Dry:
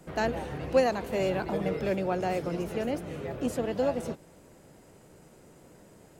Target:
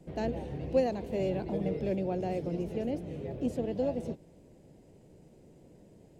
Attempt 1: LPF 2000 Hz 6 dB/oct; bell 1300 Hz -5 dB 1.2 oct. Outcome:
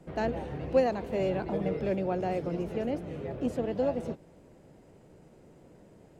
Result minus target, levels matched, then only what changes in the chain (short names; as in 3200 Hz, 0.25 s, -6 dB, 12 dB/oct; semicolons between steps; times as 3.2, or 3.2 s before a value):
1000 Hz band +3.0 dB
change: bell 1300 Hz -17 dB 1.2 oct